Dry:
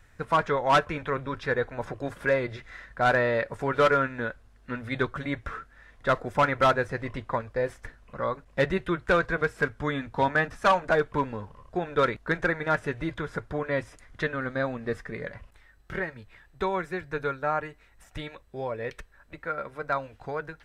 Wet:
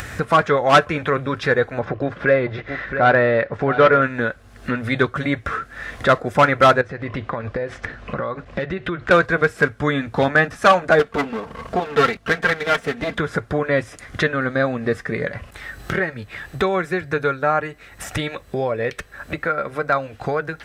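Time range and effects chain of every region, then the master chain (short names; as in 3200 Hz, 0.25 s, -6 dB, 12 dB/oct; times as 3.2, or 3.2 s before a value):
1.79–4.02 air absorption 220 m + echo 0.673 s -14.5 dB
6.81–9.11 LPF 4200 Hz + compressor 4:1, threshold -37 dBFS
10.99–13.18 minimum comb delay 4.4 ms + high shelf 8300 Hz -4.5 dB
whole clip: HPF 78 Hz 12 dB/oct; notch 950 Hz, Q 8.5; upward compressor, threshold -26 dBFS; gain +9 dB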